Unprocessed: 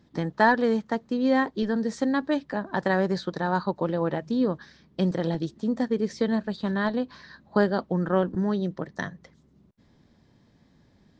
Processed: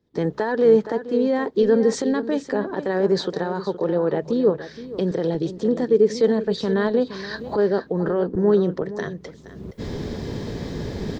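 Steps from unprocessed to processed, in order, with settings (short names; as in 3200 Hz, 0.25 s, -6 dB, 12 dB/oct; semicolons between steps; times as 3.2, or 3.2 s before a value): recorder AGC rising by 34 dB/s; limiter -17.5 dBFS, peak gain reduction 19 dB; bell 430 Hz +13 dB 0.58 oct; echo 0.47 s -11.5 dB; three-band expander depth 40%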